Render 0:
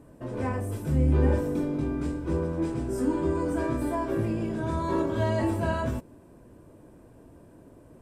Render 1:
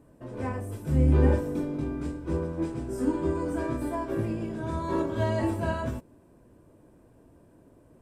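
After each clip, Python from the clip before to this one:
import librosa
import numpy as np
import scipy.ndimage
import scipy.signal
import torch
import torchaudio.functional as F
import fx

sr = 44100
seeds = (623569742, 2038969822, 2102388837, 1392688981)

y = fx.upward_expand(x, sr, threshold_db=-33.0, expansion=1.5)
y = y * 10.0 ** (2.0 / 20.0)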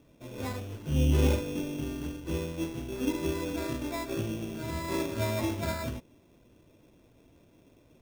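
y = fx.sample_hold(x, sr, seeds[0], rate_hz=3000.0, jitter_pct=0)
y = y * 10.0 ** (-3.5 / 20.0)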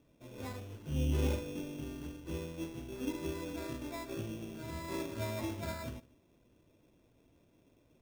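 y = x + 10.0 ** (-23.0 / 20.0) * np.pad(x, (int(152 * sr / 1000.0), 0))[:len(x)]
y = y * 10.0 ** (-7.5 / 20.0)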